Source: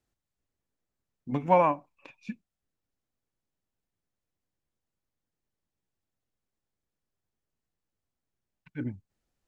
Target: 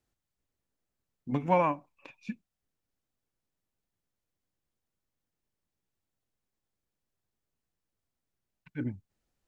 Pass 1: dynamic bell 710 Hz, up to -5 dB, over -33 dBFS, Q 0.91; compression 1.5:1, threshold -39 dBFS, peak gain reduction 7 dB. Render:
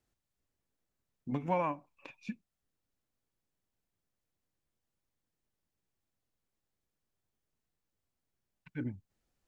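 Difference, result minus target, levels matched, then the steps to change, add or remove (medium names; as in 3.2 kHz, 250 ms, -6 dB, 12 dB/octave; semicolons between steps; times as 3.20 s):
compression: peak gain reduction +7 dB
remove: compression 1.5:1, threshold -39 dBFS, peak gain reduction 7 dB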